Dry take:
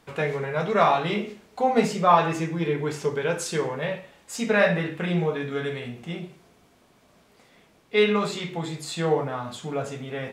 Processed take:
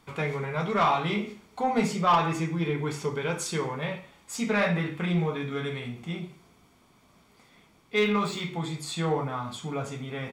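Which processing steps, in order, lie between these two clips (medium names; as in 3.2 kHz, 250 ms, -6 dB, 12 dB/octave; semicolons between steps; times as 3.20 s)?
7.95–8.52 s: median filter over 3 samples; comb 0.9 ms, depth 40%; saturation -13 dBFS, distortion -15 dB; trim -2 dB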